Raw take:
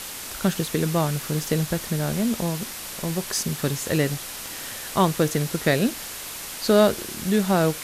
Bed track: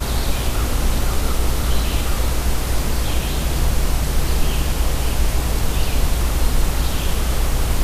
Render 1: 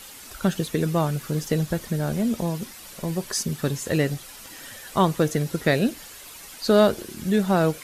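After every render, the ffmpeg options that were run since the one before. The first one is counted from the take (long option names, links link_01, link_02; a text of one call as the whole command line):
ffmpeg -i in.wav -af "afftdn=noise_reduction=10:noise_floor=-35" out.wav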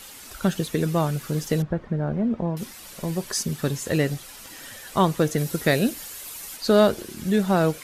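ffmpeg -i in.wav -filter_complex "[0:a]asettb=1/sr,asplit=3[link_01][link_02][link_03];[link_01]atrim=end=1.624[link_04];[link_02]atrim=start=1.62:end=2.57,asetpts=PTS-STARTPTS,afade=type=in:duration=0.004:curve=qsin,afade=type=out:start_time=0.946:duration=0.004:curve=qsin,lowpass=1400[link_05];[link_03]atrim=start=2.566[link_06];[link_04][link_05]acrossfade=duration=0.004:curve1=hsin:curve2=qsin[link_07];[link_07][link_06]acrossfade=duration=0.004:curve1=qsin:curve2=hsin,asettb=1/sr,asplit=3[link_08][link_09][link_10];[link_08]atrim=end=5.384[link_11];[link_09]atrim=start=5.38:end=6.57,asetpts=PTS-STARTPTS,afade=type=in:duration=0.004:curve=qsin,afade=type=out:start_time=1.186:duration=0.004:curve=qsin,highshelf=frequency=7300:gain=9[link_12];[link_10]atrim=start=6.566[link_13];[link_11][link_12]acrossfade=duration=0.004:curve1=hsin:curve2=qsin[link_14];[link_14][link_13]acrossfade=duration=0.004:curve1=qsin:curve2=hsin" out.wav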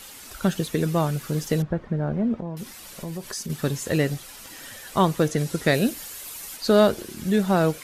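ffmpeg -i in.wav -filter_complex "[0:a]asettb=1/sr,asplit=3[link_01][link_02][link_03];[link_01]atrim=end=2.404[link_04];[link_02]atrim=start=2.4:end=3.5,asetpts=PTS-STARTPTS,afade=type=in:duration=0.004:curve=qsin,afade=type=out:start_time=1.096:duration=0.004:curve=qsin,acompressor=threshold=-31dB:ratio=2.5:attack=3.2:release=140:knee=1:detection=peak[link_05];[link_03]atrim=start=3.496[link_06];[link_04][link_05]acrossfade=duration=0.004:curve1=hsin:curve2=qsin[link_07];[link_07][link_06]acrossfade=duration=0.004:curve1=qsin:curve2=hsin,asettb=1/sr,asplit=3[link_08][link_09][link_10];[link_08]atrim=end=5.284[link_11];[link_09]atrim=start=5.28:end=5.74,asetpts=PTS-STARTPTS,afade=type=in:duration=0.004:curve=qsin,afade=type=out:start_time=0.456:duration=0.004:curve=qsin,lowpass=10000[link_12];[link_10]atrim=start=5.736[link_13];[link_11][link_12]acrossfade=duration=0.004:curve1=hsin:curve2=qsin[link_14];[link_14][link_13]acrossfade=duration=0.004:curve1=qsin:curve2=hsin" out.wav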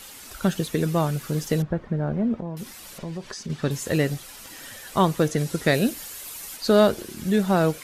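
ffmpeg -i in.wav -filter_complex "[0:a]asettb=1/sr,asplit=3[link_01][link_02][link_03];[link_01]atrim=end=2.984[link_04];[link_02]atrim=start=2.98:end=3.71,asetpts=PTS-STARTPTS,afade=type=in:duration=0.004:curve=qsin,afade=type=out:start_time=0.726:duration=0.004:curve=qsin,lowpass=5100[link_05];[link_03]atrim=start=3.706[link_06];[link_04][link_05]acrossfade=duration=0.004:curve1=hsin:curve2=qsin[link_07];[link_07][link_06]acrossfade=duration=0.004:curve1=qsin:curve2=hsin" out.wav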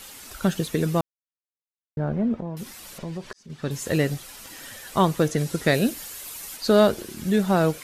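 ffmpeg -i in.wav -filter_complex "[0:a]asplit=4[link_01][link_02][link_03][link_04];[link_01]atrim=end=1.01,asetpts=PTS-STARTPTS,afade=type=out:start_time=1.006:duration=0.004:curve=hsin[link_05];[link_02]atrim=start=1.01:end=1.97,asetpts=PTS-STARTPTS,volume=0[link_06];[link_03]atrim=start=1.97:end=3.33,asetpts=PTS-STARTPTS,afade=type=in:duration=0.004:curve=hsin,afade=type=out:start_time=1.356:duration=0.004:curve=hsin[link_07];[link_04]atrim=start=3.33,asetpts=PTS-STARTPTS,afade=type=in:duration=0.52[link_08];[link_05][link_06][link_07][link_08]concat=n=4:v=0:a=1" out.wav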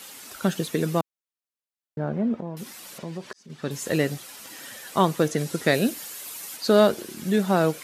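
ffmpeg -i in.wav -af "highpass=160" out.wav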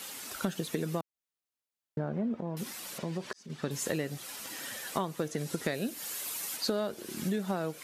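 ffmpeg -i in.wav -af "acompressor=threshold=-29dB:ratio=8" out.wav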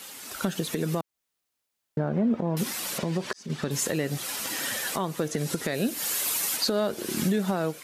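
ffmpeg -i in.wav -af "dynaudnorm=framelen=190:gausssize=5:maxgain=10dB,alimiter=limit=-16dB:level=0:latency=1:release=178" out.wav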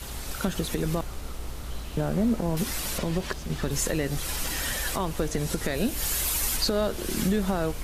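ffmpeg -i in.wav -i bed.wav -filter_complex "[1:a]volume=-17dB[link_01];[0:a][link_01]amix=inputs=2:normalize=0" out.wav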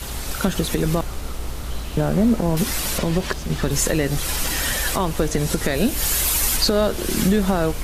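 ffmpeg -i in.wav -af "volume=7dB" out.wav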